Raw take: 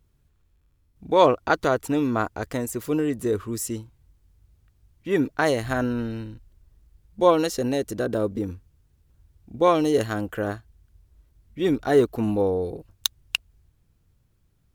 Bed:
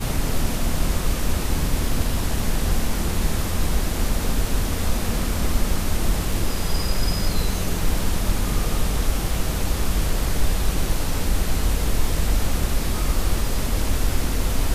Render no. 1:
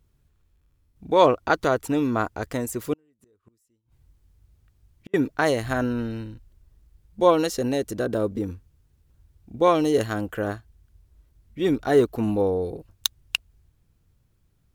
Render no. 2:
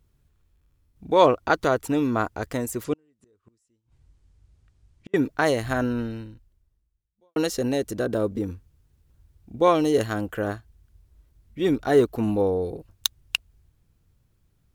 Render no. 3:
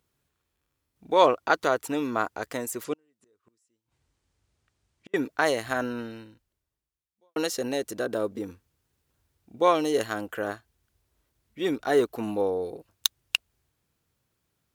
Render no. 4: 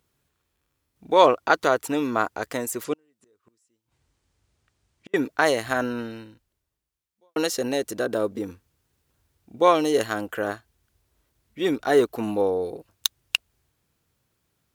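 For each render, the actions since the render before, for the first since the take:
2.93–5.14 flipped gate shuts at -25 dBFS, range -40 dB
2.84–5.16 LPF 9200 Hz 24 dB/oct; 5.99–7.36 fade out quadratic
HPF 500 Hz 6 dB/oct
gain +3.5 dB; limiter -3 dBFS, peak gain reduction 3 dB

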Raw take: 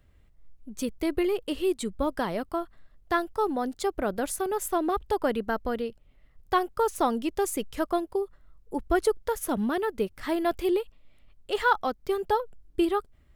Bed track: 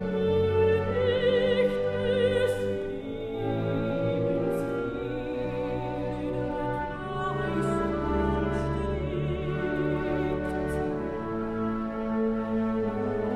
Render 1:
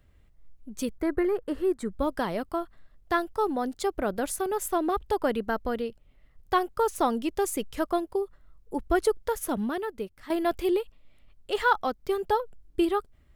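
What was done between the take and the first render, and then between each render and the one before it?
0.98–1.91 resonant high shelf 2200 Hz -8.5 dB, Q 3; 9.39–10.3 fade out, to -12 dB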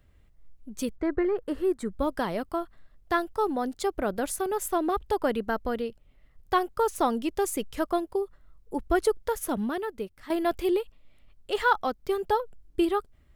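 0.96–1.38 air absorption 120 m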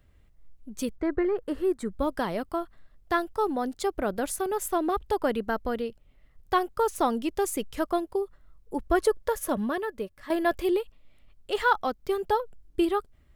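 8.84–10.62 small resonant body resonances 580/1100/1700 Hz, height 9 dB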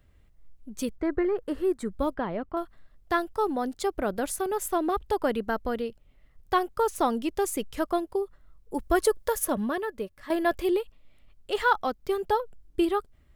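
2.14–2.57 air absorption 440 m; 8.74–9.45 high shelf 4900 Hz +8 dB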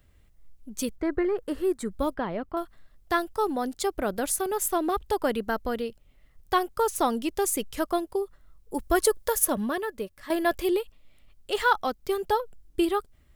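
high shelf 3800 Hz +7 dB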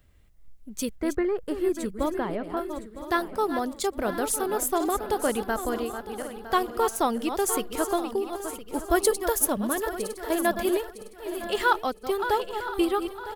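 regenerating reverse delay 0.479 s, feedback 55%, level -9 dB; echo 1.013 s -15 dB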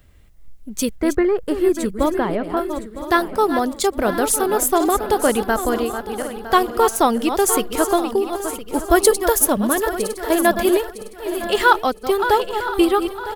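gain +8.5 dB; limiter -2 dBFS, peak gain reduction 2 dB

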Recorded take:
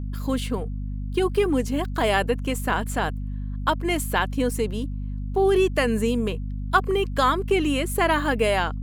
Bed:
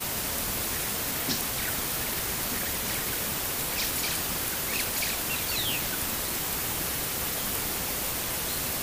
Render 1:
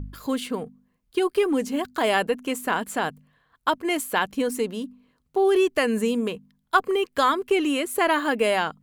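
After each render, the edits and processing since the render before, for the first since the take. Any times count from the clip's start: de-hum 50 Hz, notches 5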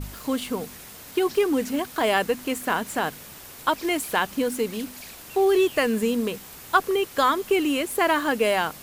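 add bed -12.5 dB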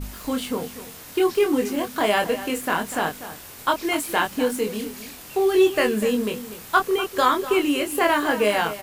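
doubler 24 ms -4 dB; outdoor echo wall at 42 m, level -13 dB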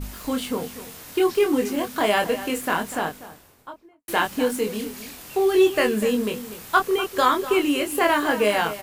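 2.69–4.08 studio fade out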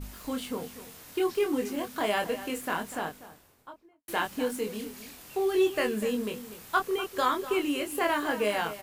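gain -7.5 dB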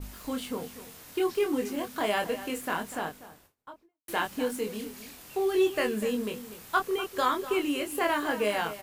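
gate with hold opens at -48 dBFS

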